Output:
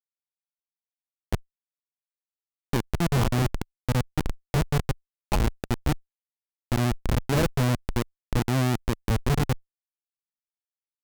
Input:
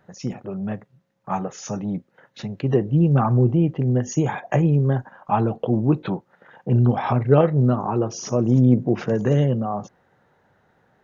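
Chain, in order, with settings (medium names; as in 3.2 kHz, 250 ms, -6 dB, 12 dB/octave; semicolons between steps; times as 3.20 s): Schmitt trigger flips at -14.5 dBFS; Chebyshev shaper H 7 -21 dB, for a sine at -15 dBFS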